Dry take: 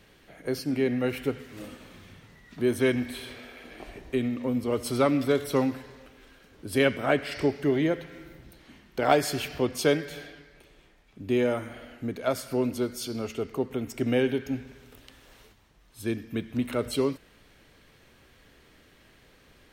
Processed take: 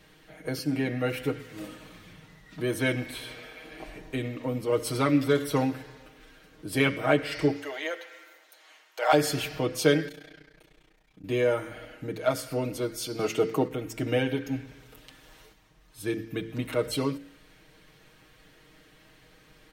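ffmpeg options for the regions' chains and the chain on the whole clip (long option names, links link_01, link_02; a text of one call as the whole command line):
ffmpeg -i in.wav -filter_complex "[0:a]asettb=1/sr,asplit=3[link_01][link_02][link_03];[link_01]atrim=end=7.564[link_04];[link_02]atrim=start=7.56:end=9.13,asetpts=PTS-STARTPTS,afade=type=in:duration=0.004:curve=qsin,afade=type=out:start_time=1.566:duration=0.004:curve=qsin,highpass=frequency=570:width=0.5412,highpass=frequency=570:width=1.3066,equalizer=frequency=6800:width=4.7:gain=6[link_05];[link_03]atrim=start=9.126[link_06];[link_04][link_05]acrossfade=duration=0.004:curve1=hsin:curve2=qsin[link_07];[link_07][link_06]acrossfade=duration=0.004:curve1=qsin:curve2=hsin,asettb=1/sr,asplit=3[link_08][link_09][link_10];[link_08]atrim=end=10.084[link_11];[link_09]atrim=start=10.08:end=11.24,asetpts=PTS-STARTPTS,afade=type=in:duration=0.004:curve=qsin,afade=type=out:start_time=1.156:duration=0.004:curve=qsin,acompressor=threshold=-42dB:ratio=4:attack=3.2:release=140:knee=1:detection=peak,tremolo=f=30:d=0.974[link_12];[link_10]atrim=start=11.236[link_13];[link_11][link_12]acrossfade=duration=0.004:curve1=hsin:curve2=qsin[link_14];[link_14][link_13]acrossfade=duration=0.004:curve1=qsin:curve2=hsin,asettb=1/sr,asplit=3[link_15][link_16][link_17];[link_15]atrim=end=13.194[link_18];[link_16]atrim=start=13.19:end=13.68,asetpts=PTS-STARTPTS,afade=type=in:duration=0.004:curve=qsin,afade=type=out:start_time=0.486:duration=0.004:curve=qsin,acontrast=55,highpass=130[link_19];[link_17]atrim=start=13.676[link_20];[link_18][link_19]acrossfade=duration=0.004:curve1=hsin:curve2=qsin[link_21];[link_21][link_20]acrossfade=duration=0.004:curve1=qsin:curve2=hsin,aecho=1:1:6.4:0.79,bandreject=frequency=56.18:width_type=h:width=4,bandreject=frequency=112.36:width_type=h:width=4,bandreject=frequency=168.54:width_type=h:width=4,bandreject=frequency=224.72:width_type=h:width=4,bandreject=frequency=280.9:width_type=h:width=4,bandreject=frequency=337.08:width_type=h:width=4,bandreject=frequency=393.26:width_type=h:width=4,bandreject=frequency=449.44:width_type=h:width=4,bandreject=frequency=505.62:width_type=h:width=4,bandreject=frequency=561.8:width_type=h:width=4,volume=-1dB" out.wav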